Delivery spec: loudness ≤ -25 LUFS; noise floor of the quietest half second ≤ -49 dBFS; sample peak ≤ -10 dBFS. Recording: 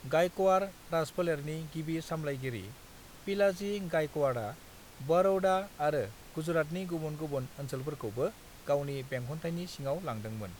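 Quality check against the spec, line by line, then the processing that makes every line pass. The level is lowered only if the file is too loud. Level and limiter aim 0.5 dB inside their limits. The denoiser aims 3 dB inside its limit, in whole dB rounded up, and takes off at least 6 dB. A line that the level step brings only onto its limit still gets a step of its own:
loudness -33.5 LUFS: OK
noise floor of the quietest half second -52 dBFS: OK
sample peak -16.0 dBFS: OK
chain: none

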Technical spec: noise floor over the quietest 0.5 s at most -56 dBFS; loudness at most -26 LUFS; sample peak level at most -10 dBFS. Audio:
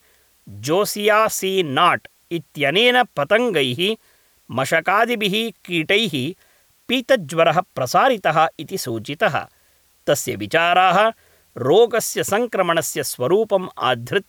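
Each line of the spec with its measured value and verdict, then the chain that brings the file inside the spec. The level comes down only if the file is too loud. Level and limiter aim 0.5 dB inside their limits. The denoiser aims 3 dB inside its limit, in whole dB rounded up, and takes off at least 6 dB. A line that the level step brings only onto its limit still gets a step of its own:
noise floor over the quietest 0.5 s -58 dBFS: OK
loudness -18.5 LUFS: fail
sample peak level -5.0 dBFS: fail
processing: gain -8 dB

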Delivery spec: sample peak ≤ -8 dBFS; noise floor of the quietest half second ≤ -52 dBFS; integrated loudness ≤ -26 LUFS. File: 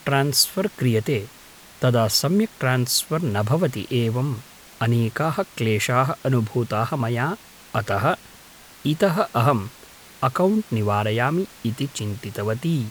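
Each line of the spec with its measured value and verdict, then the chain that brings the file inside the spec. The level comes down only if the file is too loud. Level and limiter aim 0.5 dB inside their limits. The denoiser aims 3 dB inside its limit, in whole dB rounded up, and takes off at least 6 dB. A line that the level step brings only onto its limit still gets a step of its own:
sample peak -4.5 dBFS: fail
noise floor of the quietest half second -46 dBFS: fail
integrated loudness -22.5 LUFS: fail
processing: denoiser 6 dB, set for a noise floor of -46 dBFS; gain -4 dB

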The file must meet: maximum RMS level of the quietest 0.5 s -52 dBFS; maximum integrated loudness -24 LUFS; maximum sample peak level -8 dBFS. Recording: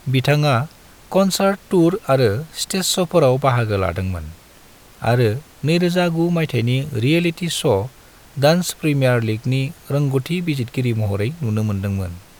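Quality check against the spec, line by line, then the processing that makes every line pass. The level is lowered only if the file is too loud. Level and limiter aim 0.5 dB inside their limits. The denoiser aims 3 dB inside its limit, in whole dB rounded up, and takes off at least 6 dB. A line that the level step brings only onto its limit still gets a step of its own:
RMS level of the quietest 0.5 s -46 dBFS: fail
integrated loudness -19.0 LUFS: fail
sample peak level -2.5 dBFS: fail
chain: denoiser 6 dB, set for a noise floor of -46 dBFS; gain -5.5 dB; limiter -8.5 dBFS

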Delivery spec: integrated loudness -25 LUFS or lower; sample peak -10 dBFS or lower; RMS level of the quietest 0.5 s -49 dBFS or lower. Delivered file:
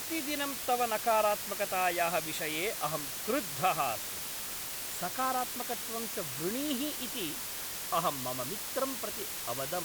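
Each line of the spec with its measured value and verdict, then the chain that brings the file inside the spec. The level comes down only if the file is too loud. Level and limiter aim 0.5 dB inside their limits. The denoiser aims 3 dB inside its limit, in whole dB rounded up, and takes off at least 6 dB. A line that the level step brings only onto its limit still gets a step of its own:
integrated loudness -32.5 LUFS: OK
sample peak -16.0 dBFS: OK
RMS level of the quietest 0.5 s -39 dBFS: fail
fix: denoiser 13 dB, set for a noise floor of -39 dBFS

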